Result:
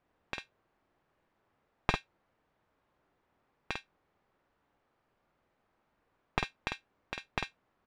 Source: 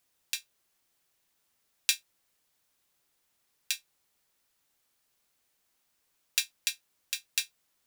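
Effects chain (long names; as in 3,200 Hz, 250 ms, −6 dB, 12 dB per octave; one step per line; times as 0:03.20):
wavefolder on the positive side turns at −18 dBFS
low-pass filter 1,200 Hz 12 dB per octave
double-tracking delay 49 ms −4 dB
level +9 dB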